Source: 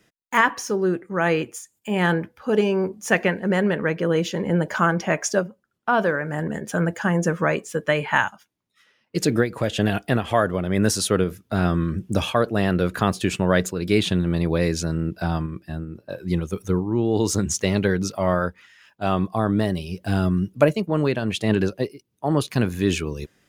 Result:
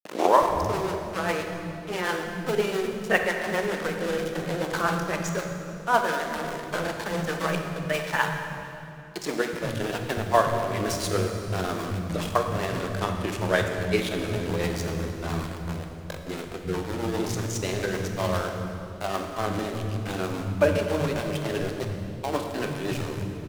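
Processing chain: tape start-up on the opening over 0.65 s; fifteen-band graphic EQ 250 Hz -4 dB, 1 kHz +4 dB, 10 kHz -4 dB; in parallel at -2 dB: level held to a coarse grid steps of 17 dB; on the sum: small samples zeroed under -21 dBFS; rotary cabinet horn 7.5 Hz; granulator, spray 17 ms, pitch spread up and down by 0 st; bands offset in time highs, lows 370 ms, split 210 Hz; on a send at -3.5 dB: reverberation RT60 2.8 s, pre-delay 18 ms; on the sum: trim -4 dB

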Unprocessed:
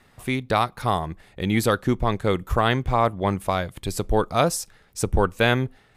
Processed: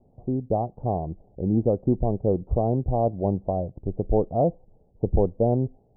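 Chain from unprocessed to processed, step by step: steep low-pass 750 Hz 48 dB/octave

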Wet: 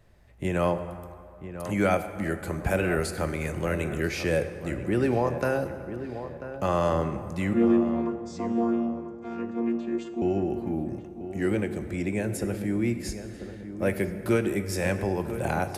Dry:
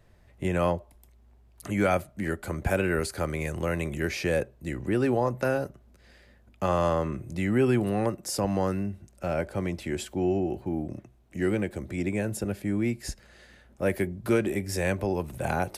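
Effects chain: 7.53–10.22 s: vocoder on a held chord bare fifth, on A#3; filtered feedback delay 991 ms, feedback 46%, low-pass 1.6 kHz, level -11 dB; plate-style reverb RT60 2.3 s, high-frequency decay 0.6×, pre-delay 0 ms, DRR 9.5 dB

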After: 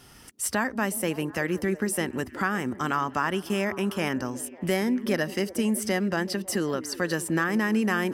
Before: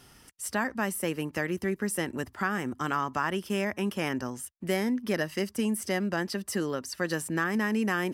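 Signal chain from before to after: recorder AGC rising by 12 dB/s; repeats whose band climbs or falls 184 ms, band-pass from 280 Hz, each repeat 0.7 oct, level -11 dB; trim +2.5 dB

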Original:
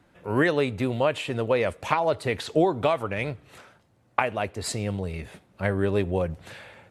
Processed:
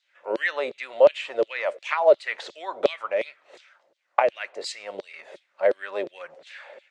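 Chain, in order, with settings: LFO high-pass saw down 2.8 Hz 390–4200 Hz; cabinet simulation 130–7300 Hz, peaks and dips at 350 Hz +4 dB, 570 Hz +10 dB, 2 kHz +3 dB; trim -4 dB

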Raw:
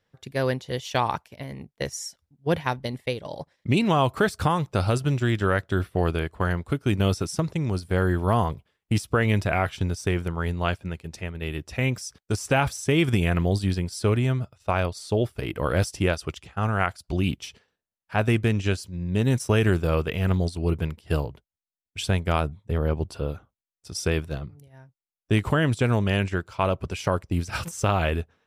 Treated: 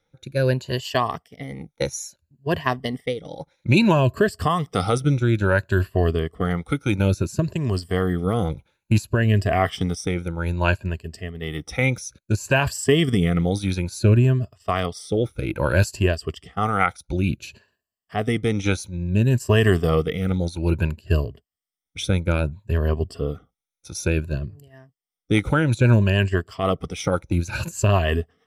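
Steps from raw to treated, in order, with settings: drifting ripple filter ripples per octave 1.4, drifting +0.59 Hz, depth 14 dB; rotary cabinet horn 1 Hz, later 6.3 Hz, at 24.67 s; trim +3 dB

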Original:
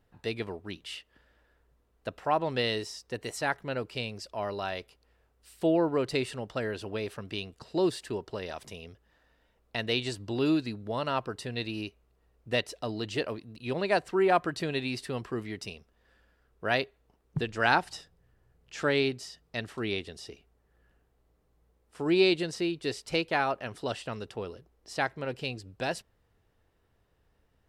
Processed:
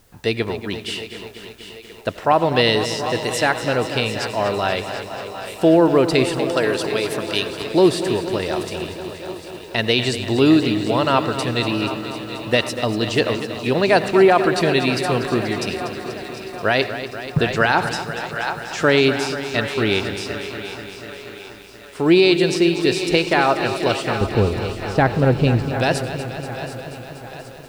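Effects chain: 6.38–7.50 s: tone controls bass -9 dB, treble +8 dB; word length cut 12-bit, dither triangular; 24.21–25.62 s: tilt EQ -4 dB/octave; two-band feedback delay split 380 Hz, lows 179 ms, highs 749 ms, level -13.5 dB; on a send at -16.5 dB: reverberation RT60 0.35 s, pre-delay 72 ms; on the sum: loudness maximiser +16 dB; bit-crushed delay 241 ms, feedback 80%, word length 7-bit, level -11.5 dB; trim -3.5 dB

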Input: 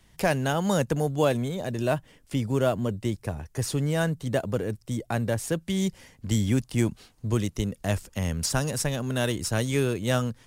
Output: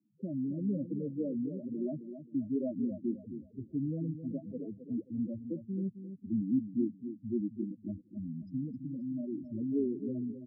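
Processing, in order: band-pass filter 280 Hz, Q 2.2; loudest bins only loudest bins 4; rotary cabinet horn 1 Hz; on a send: feedback delay 265 ms, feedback 32%, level -10 dB

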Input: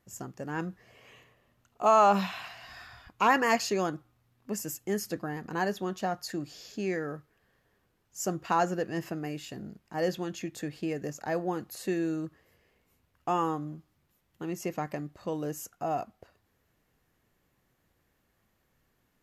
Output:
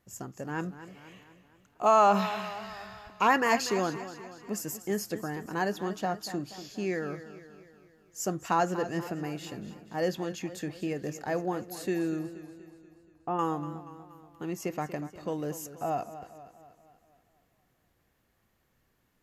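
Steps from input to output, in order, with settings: 12.19–13.39 s: tape spacing loss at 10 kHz 43 dB; modulated delay 239 ms, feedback 53%, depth 66 cents, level -13.5 dB

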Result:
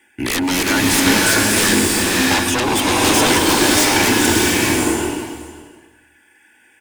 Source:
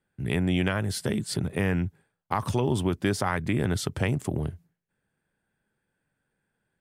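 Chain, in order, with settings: frequency weighting D; reverb removal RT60 1.6 s; bass shelf 71 Hz -10 dB; comb 3.5 ms, depth 56%; de-hum 59.04 Hz, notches 12; in parallel at -3 dB: compression, threshold -33 dBFS, peak gain reduction 15 dB; on the sum: saturation -15 dBFS, distortion -13 dB; static phaser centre 840 Hz, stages 8; sine folder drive 17 dB, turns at -13 dBFS; delay 540 ms -19 dB; swelling reverb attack 650 ms, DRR -4.5 dB; trim -2.5 dB

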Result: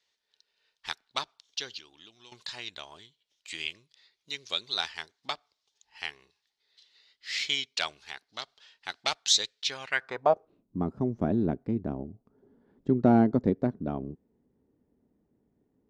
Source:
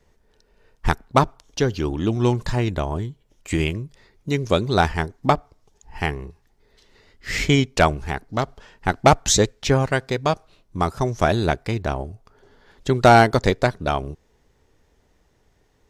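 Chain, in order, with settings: 1.74–2.32 s: compression 5:1, threshold -30 dBFS, peak gain reduction 15 dB; band-pass sweep 3.9 kHz -> 240 Hz, 9.77–10.59 s; trim +1.5 dB

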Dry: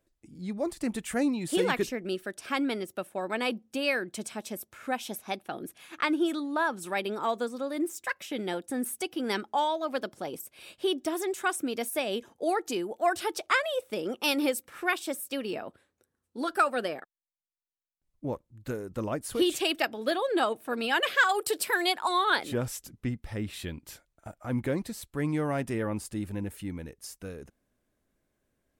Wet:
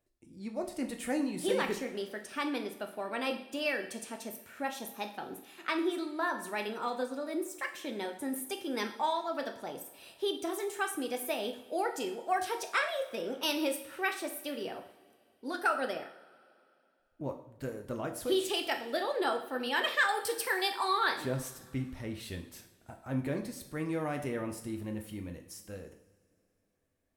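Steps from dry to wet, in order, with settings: tape speed +6%; two-slope reverb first 0.55 s, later 2.7 s, from -20 dB, DRR 4 dB; trim -5.5 dB

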